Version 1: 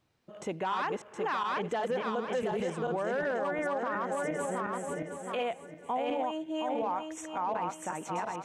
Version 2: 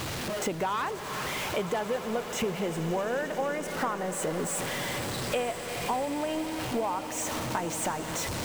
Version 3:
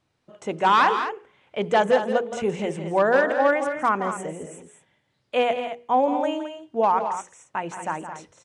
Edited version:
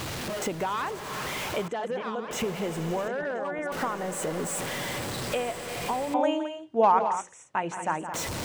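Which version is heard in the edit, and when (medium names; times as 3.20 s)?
2
1.68–2.31 s: from 1
3.08–3.72 s: from 1
6.14–8.14 s: from 3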